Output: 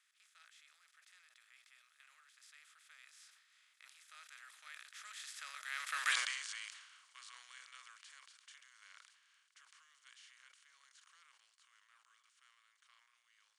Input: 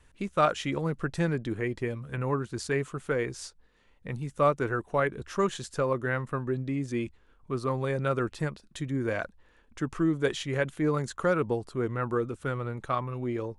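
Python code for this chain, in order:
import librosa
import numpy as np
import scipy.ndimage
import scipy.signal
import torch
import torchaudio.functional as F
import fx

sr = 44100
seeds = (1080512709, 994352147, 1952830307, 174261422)

y = fx.bin_compress(x, sr, power=0.4)
y = fx.doppler_pass(y, sr, speed_mps=22, closest_m=1.3, pass_at_s=6.12)
y = scipy.signal.sosfilt(scipy.signal.bessel(4, 2800.0, 'highpass', norm='mag', fs=sr, output='sos'), y)
y = fx.sustainer(y, sr, db_per_s=56.0)
y = y * 10.0 ** (10.5 / 20.0)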